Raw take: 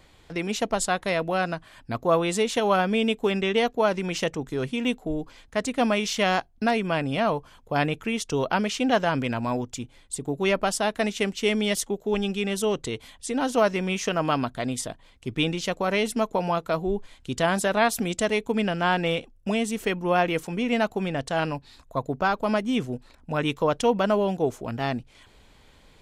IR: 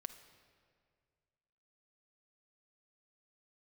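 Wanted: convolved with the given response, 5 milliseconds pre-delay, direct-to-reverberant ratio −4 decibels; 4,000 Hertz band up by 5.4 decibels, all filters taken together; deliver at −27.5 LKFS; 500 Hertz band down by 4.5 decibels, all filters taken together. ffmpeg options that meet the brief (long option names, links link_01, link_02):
-filter_complex "[0:a]equalizer=frequency=500:width_type=o:gain=-6,equalizer=frequency=4000:width_type=o:gain=7.5,asplit=2[link_01][link_02];[1:a]atrim=start_sample=2205,adelay=5[link_03];[link_02][link_03]afir=irnorm=-1:irlink=0,volume=8dB[link_04];[link_01][link_04]amix=inputs=2:normalize=0,volume=-7dB"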